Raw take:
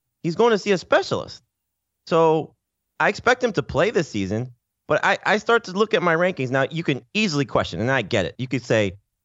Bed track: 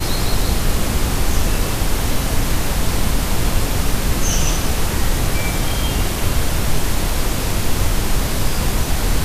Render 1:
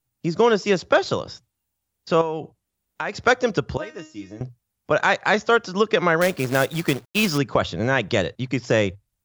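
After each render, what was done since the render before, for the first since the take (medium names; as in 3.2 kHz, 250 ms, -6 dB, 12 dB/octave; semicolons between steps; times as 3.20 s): 2.21–3.27 s: compression 2.5:1, threshold -26 dBFS; 3.77–4.41 s: feedback comb 310 Hz, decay 0.3 s, mix 90%; 6.21–7.38 s: companded quantiser 4-bit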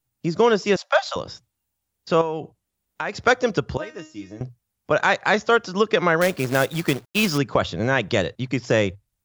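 0.76–1.16 s: steep high-pass 570 Hz 96 dB/octave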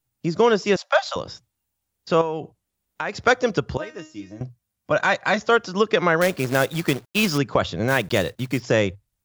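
4.20–5.41 s: comb of notches 430 Hz; 7.88–8.63 s: block-companded coder 5-bit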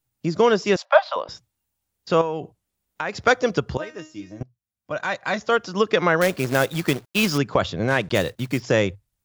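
0.85–1.29 s: cabinet simulation 450–3900 Hz, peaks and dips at 620 Hz +6 dB, 1 kHz +7 dB, 3.6 kHz -3 dB; 4.43–5.91 s: fade in, from -20 dB; 7.72–8.15 s: distance through air 72 m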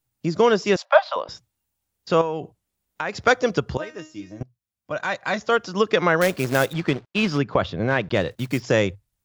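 6.73–8.31 s: distance through air 150 m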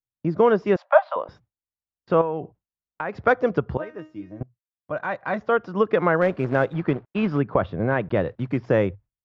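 low-pass 1.5 kHz 12 dB/octave; gate with hold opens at -45 dBFS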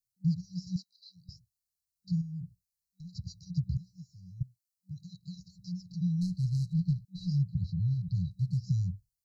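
FFT band-reject 190–3900 Hz; treble shelf 2.1 kHz +8 dB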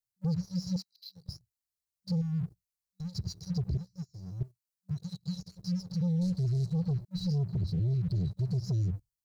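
waveshaping leveller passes 2; peak limiter -25.5 dBFS, peak gain reduction 6.5 dB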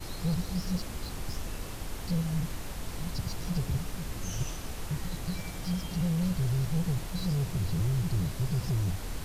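add bed track -19.5 dB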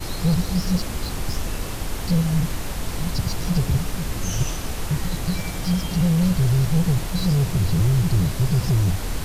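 trim +10 dB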